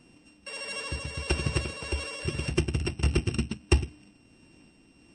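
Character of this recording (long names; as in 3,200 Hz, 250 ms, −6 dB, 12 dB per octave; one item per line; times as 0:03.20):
a buzz of ramps at a fixed pitch in blocks of 16 samples
tremolo triangle 1.6 Hz, depth 40%
MP3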